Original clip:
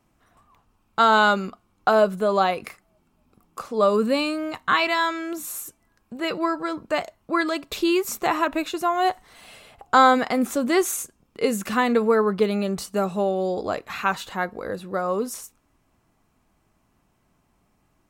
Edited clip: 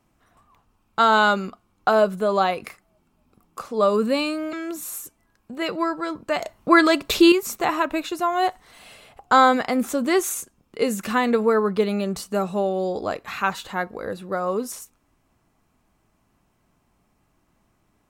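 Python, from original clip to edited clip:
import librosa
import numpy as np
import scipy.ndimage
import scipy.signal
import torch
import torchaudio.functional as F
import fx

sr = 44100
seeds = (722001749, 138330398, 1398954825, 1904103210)

y = fx.edit(x, sr, fx.cut(start_s=4.53, length_s=0.62),
    fx.clip_gain(start_s=7.03, length_s=0.91, db=8.0), tone=tone)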